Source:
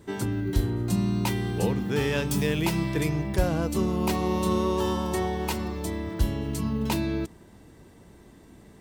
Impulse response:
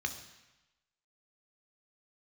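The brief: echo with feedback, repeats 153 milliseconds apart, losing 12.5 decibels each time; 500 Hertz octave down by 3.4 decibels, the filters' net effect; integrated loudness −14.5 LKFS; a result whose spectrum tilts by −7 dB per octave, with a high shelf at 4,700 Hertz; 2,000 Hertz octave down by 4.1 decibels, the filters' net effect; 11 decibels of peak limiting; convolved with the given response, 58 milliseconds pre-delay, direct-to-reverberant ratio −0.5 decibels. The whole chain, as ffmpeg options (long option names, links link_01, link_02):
-filter_complex "[0:a]equalizer=frequency=500:width_type=o:gain=-4.5,equalizer=frequency=2000:width_type=o:gain=-3.5,highshelf=frequency=4700:gain=-7.5,alimiter=limit=-22dB:level=0:latency=1,aecho=1:1:153|306|459:0.237|0.0569|0.0137,asplit=2[link_01][link_02];[1:a]atrim=start_sample=2205,adelay=58[link_03];[link_02][link_03]afir=irnorm=-1:irlink=0,volume=-2.5dB[link_04];[link_01][link_04]amix=inputs=2:normalize=0,volume=13dB"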